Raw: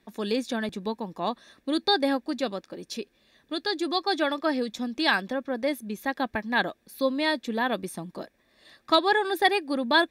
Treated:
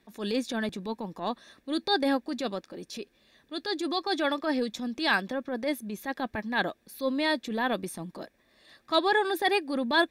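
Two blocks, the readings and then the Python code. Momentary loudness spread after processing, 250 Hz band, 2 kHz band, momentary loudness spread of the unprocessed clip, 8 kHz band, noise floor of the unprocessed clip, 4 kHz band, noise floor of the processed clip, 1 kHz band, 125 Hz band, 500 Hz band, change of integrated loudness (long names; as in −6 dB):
14 LU, −1.5 dB, −2.5 dB, 14 LU, −0.5 dB, −69 dBFS, −3.0 dB, −69 dBFS, −3.0 dB, −1.0 dB, −2.5 dB, −2.5 dB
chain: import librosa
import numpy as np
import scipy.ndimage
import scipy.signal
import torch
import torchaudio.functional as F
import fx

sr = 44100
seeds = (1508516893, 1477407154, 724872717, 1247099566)

y = fx.transient(x, sr, attack_db=-8, sustain_db=0)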